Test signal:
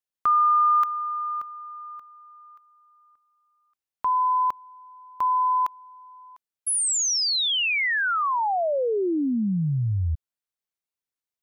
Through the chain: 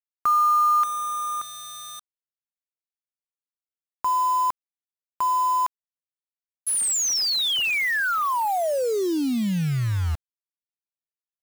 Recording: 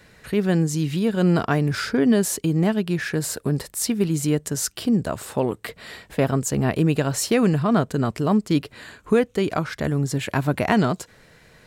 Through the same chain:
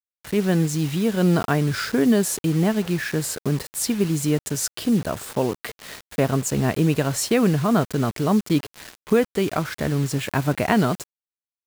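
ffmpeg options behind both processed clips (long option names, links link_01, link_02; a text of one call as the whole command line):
ffmpeg -i in.wav -af "acrusher=bits=5:mix=0:aa=0.000001" out.wav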